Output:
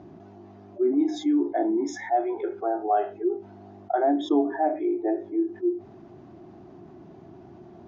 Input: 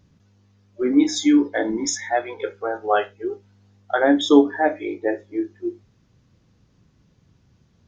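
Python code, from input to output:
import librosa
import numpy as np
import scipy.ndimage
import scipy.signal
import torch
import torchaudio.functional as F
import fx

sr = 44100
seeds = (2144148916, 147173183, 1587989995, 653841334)

y = fx.double_bandpass(x, sr, hz=500.0, octaves=0.92)
y = fx.env_flatten(y, sr, amount_pct=50)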